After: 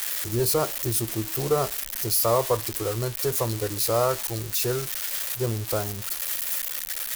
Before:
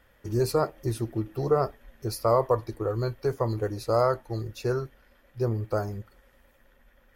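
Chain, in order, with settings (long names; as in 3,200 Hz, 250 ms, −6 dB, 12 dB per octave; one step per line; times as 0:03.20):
spike at every zero crossing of −18 dBFS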